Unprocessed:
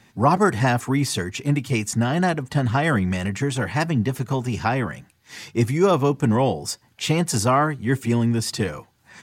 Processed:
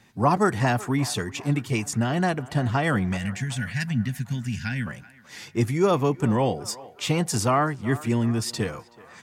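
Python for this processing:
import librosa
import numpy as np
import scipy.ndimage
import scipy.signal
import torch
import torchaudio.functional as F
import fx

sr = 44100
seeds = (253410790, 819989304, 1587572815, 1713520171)

y = fx.spec_box(x, sr, start_s=3.18, length_s=1.69, low_hz=270.0, high_hz=1400.0, gain_db=-20)
y = fx.echo_banded(y, sr, ms=377, feedback_pct=59, hz=1000.0, wet_db=-16.5)
y = F.gain(torch.from_numpy(y), -3.0).numpy()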